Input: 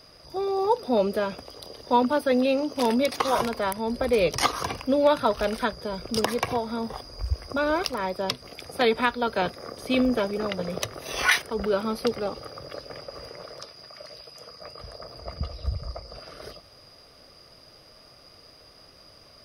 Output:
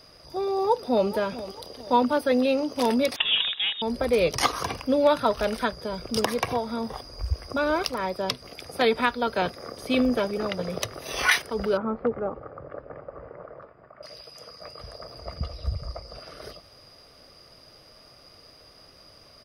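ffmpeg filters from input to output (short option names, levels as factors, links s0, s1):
-filter_complex "[0:a]asplit=2[s0][s1];[s1]afade=t=in:st=0.54:d=0.01,afade=t=out:st=1.07:d=0.01,aecho=0:1:440|880|1320|1760:0.188365|0.075346|0.0301384|0.0120554[s2];[s0][s2]amix=inputs=2:normalize=0,asettb=1/sr,asplit=3[s3][s4][s5];[s3]atrim=end=3.164[s6];[s4]atrim=start=3.16:end=3.82,asetpts=PTS-STARTPTS,afade=t=in:d=0.004:c=qsin,afade=t=out:st=0.656:d=0.004:c=qsin,lowpass=f=3300:t=q:w=0.5098,lowpass=f=3300:t=q:w=0.6013,lowpass=f=3300:t=q:w=0.9,lowpass=f=3300:t=q:w=2.563,afreqshift=-3900[s7];[s5]atrim=start=3.816[s8];[s6][s7]acrossfade=d=0.004:c1=hsin:c2=qsin[s9];[s9][s8]acrossfade=d=0.004:c1=qsin:c2=hsin,asettb=1/sr,asplit=3[s10][s11][s12];[s10]atrim=end=11.774[s13];[s11]atrim=start=11.77:end=14.03,asetpts=PTS-STARTPTS,afade=t=in:d=0.004:c=qsin,afade=t=out:st=2.256:d=0.004:c=qsin,lowpass=f=1600:w=0.5412,lowpass=f=1600:w=1.3066[s14];[s12]atrim=start=14.026[s15];[s13][s14]acrossfade=d=0.004:c1=hsin:c2=qsin[s16];[s16][s15]acrossfade=d=0.004:c1=qsin:c2=hsin"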